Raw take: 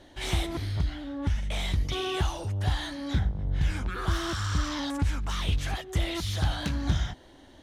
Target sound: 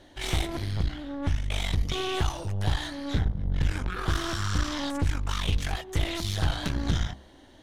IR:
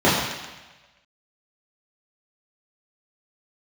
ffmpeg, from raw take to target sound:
-af "aeval=exprs='0.2*(cos(1*acos(clip(val(0)/0.2,-1,1)))-cos(1*PI/2))+0.0282*(cos(6*acos(clip(val(0)/0.2,-1,1)))-cos(6*PI/2))':c=same,bandreject=f=68.01:t=h:w=4,bandreject=f=136.02:t=h:w=4,bandreject=f=204.03:t=h:w=4,bandreject=f=272.04:t=h:w=4,bandreject=f=340.05:t=h:w=4,bandreject=f=408.06:t=h:w=4,bandreject=f=476.07:t=h:w=4,bandreject=f=544.08:t=h:w=4,bandreject=f=612.09:t=h:w=4,bandreject=f=680.1:t=h:w=4,bandreject=f=748.11:t=h:w=4,bandreject=f=816.12:t=h:w=4,bandreject=f=884.13:t=h:w=4,bandreject=f=952.14:t=h:w=4,bandreject=f=1.02015k:t=h:w=4,bandreject=f=1.08816k:t=h:w=4,bandreject=f=1.15617k:t=h:w=4"

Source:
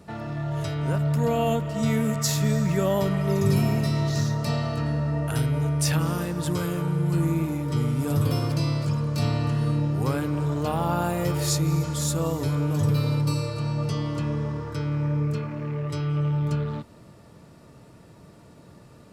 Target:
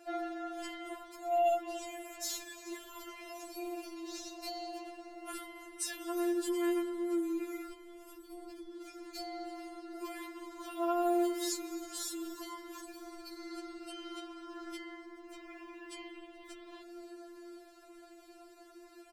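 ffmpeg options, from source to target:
-filter_complex "[0:a]asettb=1/sr,asplit=3[a][b][c];[a]atrim=end=7.704[d];[b]atrim=start=7.7:end=8.66,asetpts=PTS-STARTPTS,afade=t=in:d=0.004:c=qsin,afade=t=out:st=0.956:d=0.004:c=qsin,lowshelf=f=290:t=q:w=1.5:g=12[e];[c]atrim=start=8.656[f];[d][e]acrossfade=d=0.004:c1=hsin:c2=qsin[g];[g][f]acrossfade=d=0.004:c1=qsin:c2=hsin,acompressor=threshold=-29dB:ratio=6,asplit=4[h][i][j][k];[i]adelay=429,afreqshift=100,volume=-23dB[l];[j]adelay=858,afreqshift=200,volume=-30.1dB[m];[k]adelay=1287,afreqshift=300,volume=-37.3dB[n];[h][l][m][n]amix=inputs=4:normalize=0,afftfilt=real='re*4*eq(mod(b,16),0)':imag='im*4*eq(mod(b,16),0)':win_size=2048:overlap=0.75"

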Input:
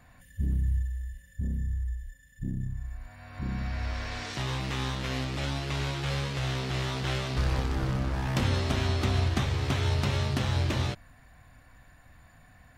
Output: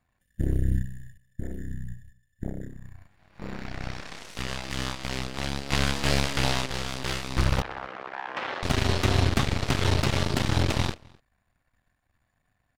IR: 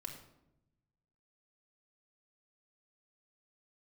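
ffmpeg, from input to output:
-filter_complex "[0:a]aeval=exprs='0.2*(cos(1*acos(clip(val(0)/0.2,-1,1)))-cos(1*PI/2))+0.0126*(cos(3*acos(clip(val(0)/0.2,-1,1)))-cos(3*PI/2))+0.0141*(cos(5*acos(clip(val(0)/0.2,-1,1)))-cos(5*PI/2))+0.0355*(cos(7*acos(clip(val(0)/0.2,-1,1)))-cos(7*PI/2))+0.0178*(cos(8*acos(clip(val(0)/0.2,-1,1)))-cos(8*PI/2))':c=same,asettb=1/sr,asplit=3[a][b][c];[a]atrim=end=5.724[d];[b]atrim=start=5.72:end=6.66,asetpts=PTS-STARTPTS,afade=t=in:d=0.004:c=qsin,afade=t=out:st=0.936:d=0.004:c=qsin,acontrast=70[e];[c]atrim=start=6.656[f];[d][e]acrossfade=d=0.004:c1=hsin:c2=qsin[g];[g][f]acrossfade=d=0.004:c1=qsin:c2=hsin,asettb=1/sr,asplit=3[h][i][j];[h]atrim=end=7.624[k];[i]atrim=start=7.62:end=8.63,asetpts=PTS-STARTPTS,afade=t=in:d=0.004:c=qsin,afade=t=out:st=1.006:d=0.004:c=qsin,highpass=710,lowpass=2.1k[l];[j]atrim=start=8.626[m];[k][l]acrossfade=d=0.004:c1=hsin:c2=qsin[n];[n][m]acrossfade=d=0.004:c1=qsin:c2=hsin,asplit=2[o][p];[p]adelay=256.6,volume=-26dB,highshelf=f=4k:g=-5.77[q];[o][q]amix=inputs=2:normalize=0,volume=4dB"

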